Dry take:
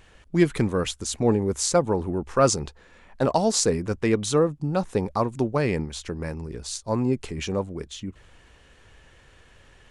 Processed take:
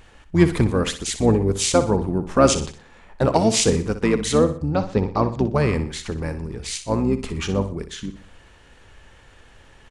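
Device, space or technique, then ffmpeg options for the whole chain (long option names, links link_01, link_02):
octave pedal: -filter_complex "[0:a]asplit=2[link_01][link_02];[link_02]asetrate=22050,aresample=44100,atempo=2,volume=-6dB[link_03];[link_01][link_03]amix=inputs=2:normalize=0,asettb=1/sr,asplit=3[link_04][link_05][link_06];[link_04]atrim=end=4.704[link_07];[link_05]atrim=start=4.7:end=5.43,asetpts=PTS-STARTPTS,afade=type=in:duration=0.004:curve=qsin,afade=type=out:start_time=0.726:duration=0.004:curve=qsin,lowpass=frequency=6100:width=0.5412,lowpass=frequency=6100:width=1.3066[link_08];[link_06]atrim=start=5.426[link_09];[link_07][link_08]acrossfade=duration=0.004:curve1=hsin:curve2=qsin[link_10];[link_10][link_09]acrossfade=duration=0.004:curve1=qsin:curve2=hsin,aecho=1:1:61|122|183|244:0.266|0.109|0.0447|0.0183,volume=2.5dB"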